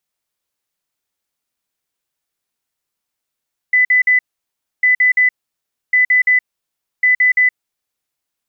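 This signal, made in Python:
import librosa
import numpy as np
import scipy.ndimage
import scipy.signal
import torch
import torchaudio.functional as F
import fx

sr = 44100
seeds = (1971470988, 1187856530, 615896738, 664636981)

y = fx.beep_pattern(sr, wave='sine', hz=2000.0, on_s=0.12, off_s=0.05, beeps=3, pause_s=0.64, groups=4, level_db=-8.5)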